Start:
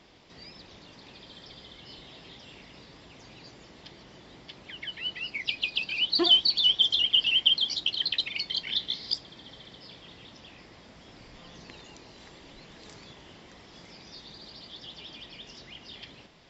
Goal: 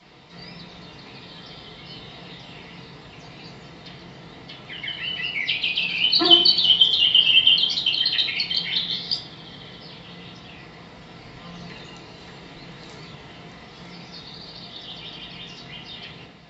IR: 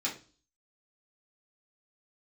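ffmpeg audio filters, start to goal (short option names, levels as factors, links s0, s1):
-filter_complex "[1:a]atrim=start_sample=2205,asetrate=24255,aresample=44100[s0];[0:a][s0]afir=irnorm=-1:irlink=0,volume=0.841"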